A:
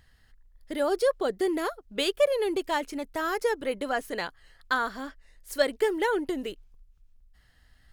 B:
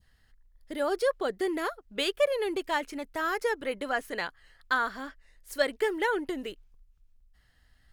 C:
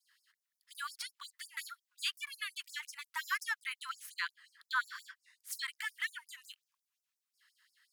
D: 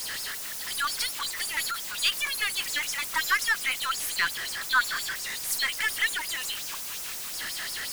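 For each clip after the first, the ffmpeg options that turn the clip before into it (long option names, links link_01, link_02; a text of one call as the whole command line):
ffmpeg -i in.wav -af "adynamicequalizer=threshold=0.0112:dfrequency=1800:dqfactor=0.77:tfrequency=1800:tqfactor=0.77:attack=5:release=100:ratio=0.375:range=2.5:mode=boostabove:tftype=bell,volume=-3.5dB" out.wav
ffmpeg -i in.wav -af "alimiter=limit=-22dB:level=0:latency=1:release=103,afftfilt=real='re*gte(b*sr/1024,870*pow(5000/870,0.5+0.5*sin(2*PI*5.6*pts/sr)))':imag='im*gte(b*sr/1024,870*pow(5000/870,0.5+0.5*sin(2*PI*5.6*pts/sr)))':win_size=1024:overlap=0.75,volume=1.5dB" out.wav
ffmpeg -i in.wav -af "aeval=exprs='val(0)+0.5*0.015*sgn(val(0))':channel_layout=same,aeval=exprs='0.1*(cos(1*acos(clip(val(0)/0.1,-1,1)))-cos(1*PI/2))+0.00178*(cos(8*acos(clip(val(0)/0.1,-1,1)))-cos(8*PI/2))':channel_layout=same,volume=8.5dB" out.wav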